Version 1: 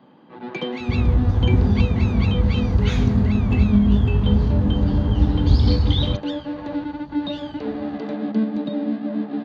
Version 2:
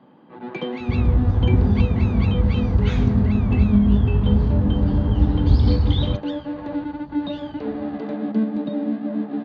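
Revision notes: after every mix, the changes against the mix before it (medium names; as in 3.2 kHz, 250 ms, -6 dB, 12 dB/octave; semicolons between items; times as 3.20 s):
master: add treble shelf 4 kHz -11 dB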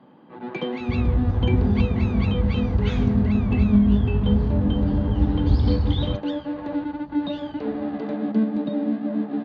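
second sound -3.5 dB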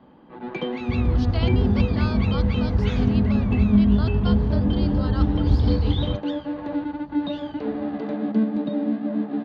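speech: unmuted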